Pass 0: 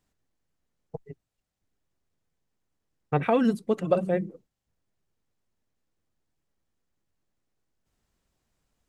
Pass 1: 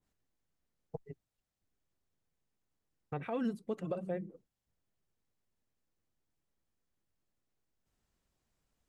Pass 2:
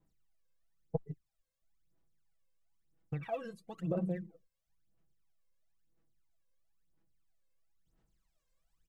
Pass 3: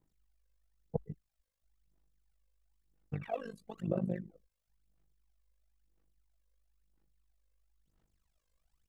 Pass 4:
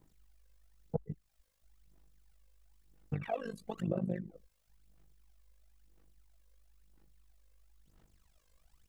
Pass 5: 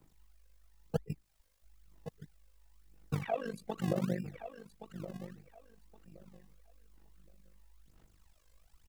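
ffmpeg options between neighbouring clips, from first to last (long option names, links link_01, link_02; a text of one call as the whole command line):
ffmpeg -i in.wav -af "alimiter=limit=-21dB:level=0:latency=1:release=409,adynamicequalizer=threshold=0.00316:dfrequency=1900:dqfactor=0.7:tfrequency=1900:tqfactor=0.7:attack=5:release=100:ratio=0.375:range=2:mode=cutabove:tftype=highshelf,volume=-5dB" out.wav
ffmpeg -i in.wav -af "aecho=1:1:6.1:0.65,aphaser=in_gain=1:out_gain=1:delay=1.9:decay=0.8:speed=1:type=sinusoidal,volume=-7.5dB" out.wav
ffmpeg -i in.wav -af "tremolo=f=50:d=0.857,volume=3.5dB" out.wav
ffmpeg -i in.wav -af "acompressor=threshold=-49dB:ratio=2,volume=10dB" out.wav
ffmpeg -i in.wav -filter_complex "[0:a]aecho=1:1:1120|2240|3360:0.266|0.0585|0.0129,acrossover=split=190|1200[link_01][link_02][link_03];[link_01]acrusher=samples=33:mix=1:aa=0.000001:lfo=1:lforange=33:lforate=1.6[link_04];[link_04][link_02][link_03]amix=inputs=3:normalize=0,volume=2dB" out.wav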